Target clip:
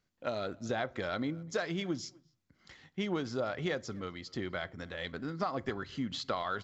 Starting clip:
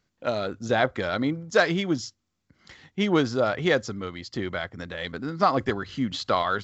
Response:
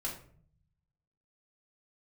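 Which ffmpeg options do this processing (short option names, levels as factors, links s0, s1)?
-filter_complex "[0:a]acompressor=threshold=0.0708:ratio=10,asplit=2[s0][s1];[s1]adelay=250,highpass=300,lowpass=3400,asoftclip=type=hard:threshold=0.0668,volume=0.0631[s2];[s0][s2]amix=inputs=2:normalize=0,asplit=2[s3][s4];[1:a]atrim=start_sample=2205,afade=t=out:st=0.45:d=0.01,atrim=end_sample=20286[s5];[s4][s5]afir=irnorm=-1:irlink=0,volume=0.106[s6];[s3][s6]amix=inputs=2:normalize=0,volume=0.447"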